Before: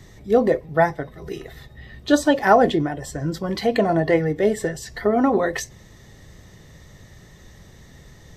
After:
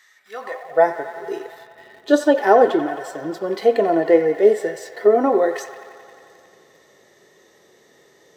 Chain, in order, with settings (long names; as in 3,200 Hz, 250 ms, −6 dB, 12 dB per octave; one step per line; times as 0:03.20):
delay with a band-pass on its return 89 ms, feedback 81%, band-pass 1,500 Hz, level −12.5 dB
harmonic and percussive parts rebalanced harmonic +7 dB
in parallel at −10 dB: centre clipping without the shift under −30 dBFS
on the sum: high-pass filter sweep 1,500 Hz → 400 Hz, 0:00.36–0:00.89
level −9 dB